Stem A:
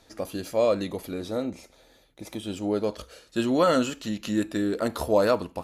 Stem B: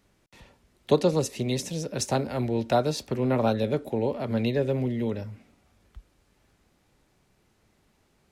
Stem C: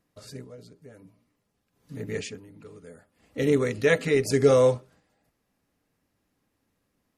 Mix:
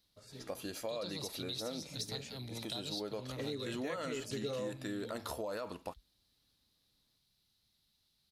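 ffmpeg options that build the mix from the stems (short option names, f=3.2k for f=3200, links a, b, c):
-filter_complex "[0:a]adelay=300,volume=-3.5dB[a];[1:a]firequalizer=gain_entry='entry(130,0);entry(390,-13);entry(2400,-7);entry(3900,13);entry(7000,-4);entry(11000,6)':delay=0.05:min_phase=1,volume=-8dB[b];[2:a]volume=-11.5dB[c];[a][b]amix=inputs=2:normalize=0,lowshelf=f=450:g=-8,alimiter=level_in=0.5dB:limit=-24dB:level=0:latency=1:release=28,volume=-0.5dB,volume=0dB[d];[c][d]amix=inputs=2:normalize=0,acompressor=threshold=-37dB:ratio=4"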